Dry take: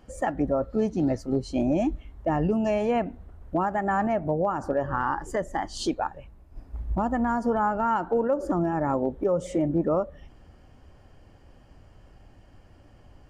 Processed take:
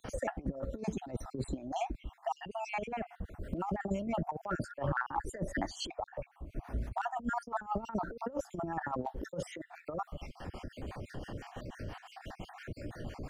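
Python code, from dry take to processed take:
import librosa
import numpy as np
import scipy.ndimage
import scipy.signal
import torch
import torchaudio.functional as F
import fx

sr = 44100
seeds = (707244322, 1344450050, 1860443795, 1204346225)

y = fx.spec_dropout(x, sr, seeds[0], share_pct=52)
y = fx.over_compress(y, sr, threshold_db=-32.0, ratio=-0.5)
y = fx.harmonic_tremolo(y, sr, hz=5.9, depth_pct=70, crossover_hz=580.0)
y = fx.band_squash(y, sr, depth_pct=70)
y = y * librosa.db_to_amplitude(1.0)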